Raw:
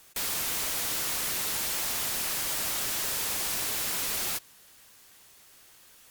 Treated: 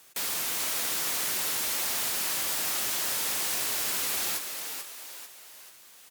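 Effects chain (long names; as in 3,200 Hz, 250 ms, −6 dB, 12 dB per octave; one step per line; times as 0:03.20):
high-pass filter 180 Hz 6 dB per octave
on a send: echo with shifted repeats 440 ms, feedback 45%, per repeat +85 Hz, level −6.5 dB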